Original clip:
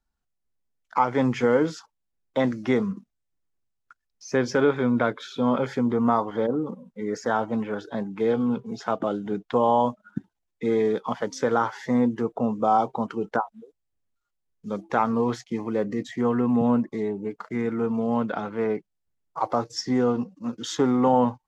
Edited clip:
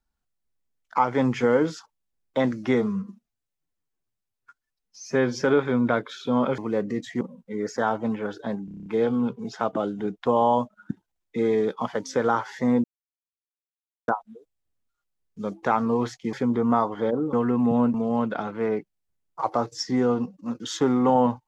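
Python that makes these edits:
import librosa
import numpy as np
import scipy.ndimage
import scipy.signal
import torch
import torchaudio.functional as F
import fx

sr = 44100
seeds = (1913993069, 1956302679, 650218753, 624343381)

y = fx.edit(x, sr, fx.stretch_span(start_s=2.74, length_s=1.78, factor=1.5),
    fx.swap(start_s=5.69, length_s=1.0, other_s=15.6, other_length_s=0.63),
    fx.stutter(start_s=8.13, slice_s=0.03, count=8),
    fx.silence(start_s=12.11, length_s=1.24),
    fx.cut(start_s=16.84, length_s=1.08), tone=tone)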